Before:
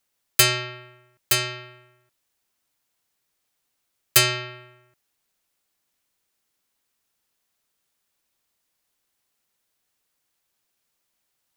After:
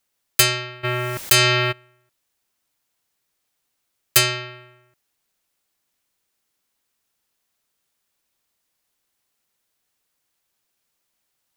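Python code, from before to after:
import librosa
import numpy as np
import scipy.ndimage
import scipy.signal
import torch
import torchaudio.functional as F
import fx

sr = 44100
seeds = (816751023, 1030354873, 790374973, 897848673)

y = fx.env_flatten(x, sr, amount_pct=70, at=(0.83, 1.71), fade=0.02)
y = y * librosa.db_to_amplitude(1.0)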